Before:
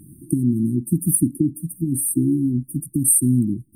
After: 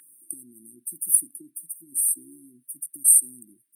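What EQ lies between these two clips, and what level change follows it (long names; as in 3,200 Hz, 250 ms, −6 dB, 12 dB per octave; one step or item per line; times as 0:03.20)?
high-pass with resonance 1,600 Hz, resonance Q 2.7
parametric band 3,000 Hz +6 dB 1.7 octaves
0.0 dB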